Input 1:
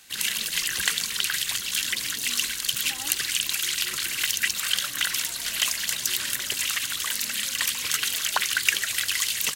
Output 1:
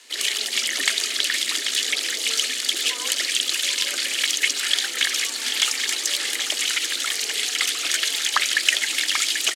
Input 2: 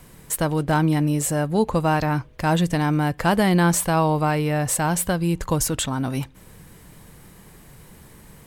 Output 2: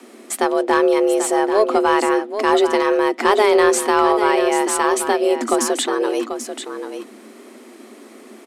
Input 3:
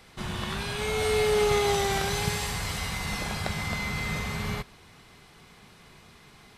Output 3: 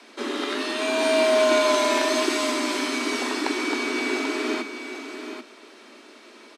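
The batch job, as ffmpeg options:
-filter_complex "[0:a]lowpass=8000,afreqshift=210,acontrast=38,asplit=2[s0][s1];[s1]aecho=0:1:788:0.355[s2];[s0][s2]amix=inputs=2:normalize=0,volume=0.891"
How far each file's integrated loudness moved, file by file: +3.5 LU, +4.5 LU, +5.0 LU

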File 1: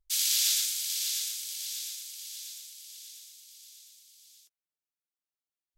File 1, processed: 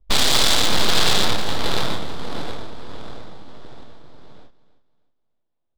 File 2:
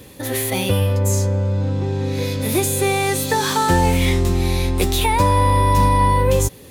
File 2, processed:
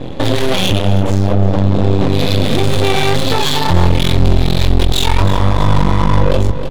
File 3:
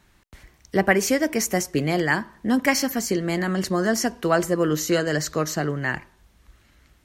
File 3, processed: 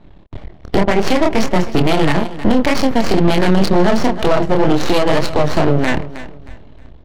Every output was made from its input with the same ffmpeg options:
-filter_complex "[0:a]equalizer=f=640:t=o:w=0.27:g=7,acrossover=split=150[s0][s1];[s1]acompressor=threshold=0.0501:ratio=4[s2];[s0][s2]amix=inputs=2:normalize=0,firequalizer=gain_entry='entry(880,0);entry(1300,-8);entry(3500,13);entry(6300,2);entry(12000,5)':delay=0.05:min_phase=1,acrossover=split=4300[s3][s4];[s3]aeval=exprs='clip(val(0),-1,0.106)':c=same[s5];[s5][s4]amix=inputs=2:normalize=0,flanger=delay=22.5:depth=5.5:speed=2.1,aeval=exprs='max(val(0),0)':c=same,adynamicsmooth=sensitivity=5.5:basefreq=910,aecho=1:1:314|628|942:0.141|0.041|0.0119,alimiter=level_in=18.8:limit=0.891:release=50:level=0:latency=1,volume=0.891"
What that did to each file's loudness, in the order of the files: +9.0 LU, +4.0 LU, +7.5 LU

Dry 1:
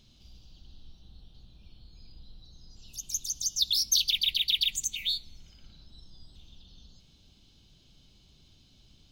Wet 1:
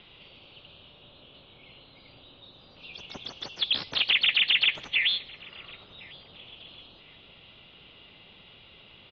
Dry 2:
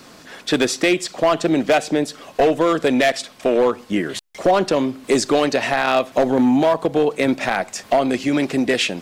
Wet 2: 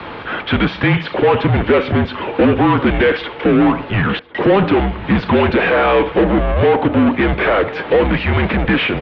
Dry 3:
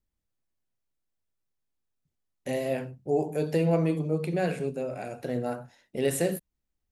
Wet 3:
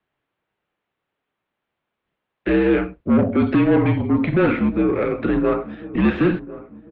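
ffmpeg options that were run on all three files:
-filter_complex "[0:a]asplit=2[s0][s1];[s1]highpass=f=720:p=1,volume=17.8,asoftclip=type=tanh:threshold=0.398[s2];[s0][s2]amix=inputs=2:normalize=0,lowpass=f=1700:p=1,volume=0.501,highpass=f=290:t=q:w=0.5412,highpass=f=290:t=q:w=1.307,lowpass=f=3600:t=q:w=0.5176,lowpass=f=3600:t=q:w=0.7071,lowpass=f=3600:t=q:w=1.932,afreqshift=-200,asplit=2[s3][s4];[s4]adelay=1052,lowpass=f=1200:p=1,volume=0.15,asplit=2[s5][s6];[s6]adelay=1052,lowpass=f=1200:p=1,volume=0.44,asplit=2[s7][s8];[s8]adelay=1052,lowpass=f=1200:p=1,volume=0.44,asplit=2[s9][s10];[s10]adelay=1052,lowpass=f=1200:p=1,volume=0.44[s11];[s3][s5][s7][s9][s11]amix=inputs=5:normalize=0,volume=1.33"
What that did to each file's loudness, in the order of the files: +2.5 LU, +4.0 LU, +10.0 LU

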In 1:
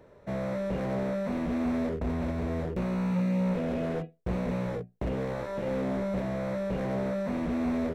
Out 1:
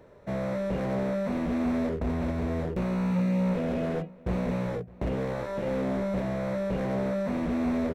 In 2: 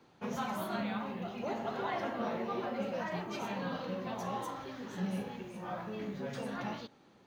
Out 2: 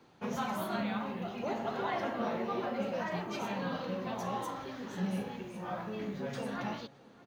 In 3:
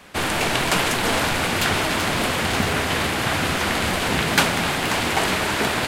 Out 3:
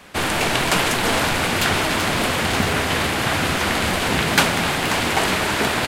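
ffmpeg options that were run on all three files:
-filter_complex "[0:a]asplit=2[s0][s1];[s1]adelay=611,lowpass=f=2800:p=1,volume=0.0794,asplit=2[s2][s3];[s3]adelay=611,lowpass=f=2800:p=1,volume=0.31[s4];[s0][s2][s4]amix=inputs=3:normalize=0,volume=1.19"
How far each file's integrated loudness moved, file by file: +1.5 LU, +1.5 LU, +1.5 LU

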